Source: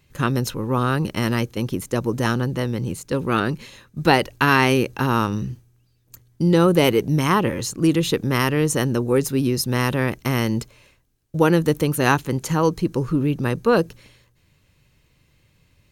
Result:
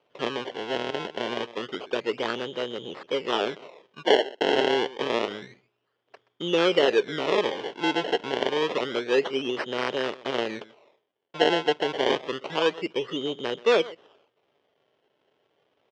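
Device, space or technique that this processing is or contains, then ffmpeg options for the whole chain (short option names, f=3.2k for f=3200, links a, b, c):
circuit-bent sampling toy: -filter_complex "[0:a]asplit=3[a][b][c];[a]afade=t=out:st=4.02:d=0.02[d];[b]highpass=f=220:w=0.5412,highpass=f=220:w=1.3066,afade=t=in:st=4.02:d=0.02,afade=t=out:st=4.57:d=0.02[e];[c]afade=t=in:st=4.57:d=0.02[f];[d][e][f]amix=inputs=3:normalize=0,asplit=2[g][h];[h]adelay=128.3,volume=-19dB,highshelf=f=4k:g=-2.89[i];[g][i]amix=inputs=2:normalize=0,acrusher=samples=25:mix=1:aa=0.000001:lfo=1:lforange=25:lforate=0.28,highpass=420,equalizer=f=420:t=q:w=4:g=8,equalizer=f=600:t=q:w=4:g=4,equalizer=f=3.1k:t=q:w=4:g=9,equalizer=f=4.4k:t=q:w=4:g=-4,lowpass=f=5k:w=0.5412,lowpass=f=5k:w=1.3066,volume=-5dB"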